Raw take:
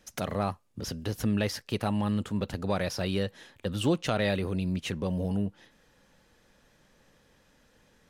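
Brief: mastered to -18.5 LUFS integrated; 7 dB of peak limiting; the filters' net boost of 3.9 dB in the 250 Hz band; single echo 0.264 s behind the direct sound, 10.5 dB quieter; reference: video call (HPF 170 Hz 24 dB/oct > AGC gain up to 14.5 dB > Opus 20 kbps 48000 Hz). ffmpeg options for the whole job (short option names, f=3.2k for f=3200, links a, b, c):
-af "equalizer=f=250:t=o:g=6.5,alimiter=limit=-18.5dB:level=0:latency=1,highpass=f=170:w=0.5412,highpass=f=170:w=1.3066,aecho=1:1:264:0.299,dynaudnorm=m=14.5dB,volume=13dB" -ar 48000 -c:a libopus -b:a 20k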